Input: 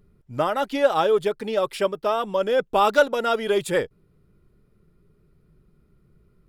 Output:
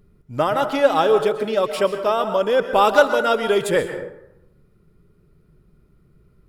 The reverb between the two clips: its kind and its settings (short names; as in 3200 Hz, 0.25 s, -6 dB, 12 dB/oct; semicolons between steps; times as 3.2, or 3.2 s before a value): plate-style reverb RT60 0.84 s, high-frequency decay 0.5×, pre-delay 0.11 s, DRR 8 dB; gain +3 dB